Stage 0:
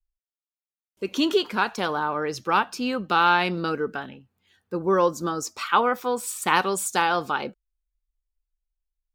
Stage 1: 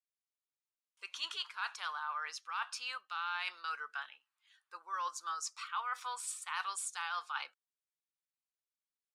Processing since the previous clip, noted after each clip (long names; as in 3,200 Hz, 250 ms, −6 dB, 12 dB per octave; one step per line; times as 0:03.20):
Chebyshev band-pass filter 1,100–10,000 Hz, order 3
reversed playback
downward compressor 6 to 1, threshold −31 dBFS, peak gain reduction 14 dB
reversed playback
level −4.5 dB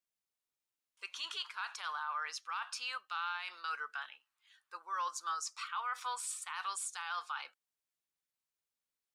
brickwall limiter −31.5 dBFS, peak gain reduction 8 dB
level +2 dB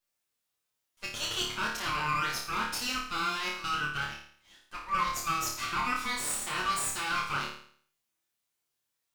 lower of the sound and its delayed copy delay 8.6 ms
flutter between parallel walls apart 4.7 metres, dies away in 0.55 s
level +7 dB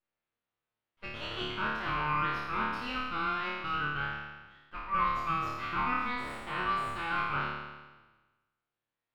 peak hold with a decay on every bin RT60 1.25 s
high-frequency loss of the air 440 metres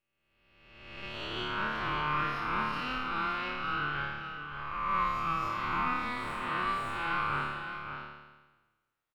peak hold with a rise ahead of every peak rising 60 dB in 1.30 s
single-tap delay 567 ms −8 dB
level −2.5 dB